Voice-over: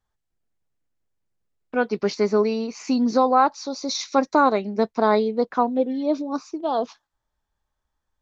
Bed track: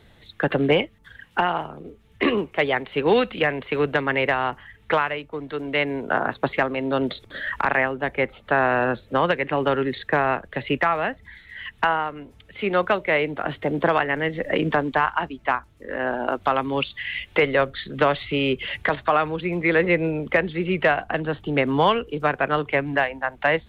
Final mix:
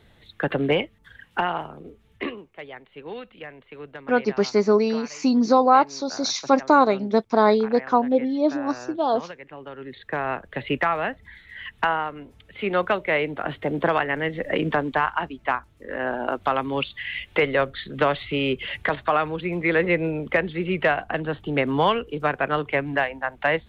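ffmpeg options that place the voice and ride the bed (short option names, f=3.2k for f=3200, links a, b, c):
-filter_complex "[0:a]adelay=2350,volume=1.5dB[a];[1:a]volume=13.5dB,afade=t=out:st=2.08:d=0.28:silence=0.177828,afade=t=in:st=9.75:d=0.89:silence=0.158489[b];[a][b]amix=inputs=2:normalize=0"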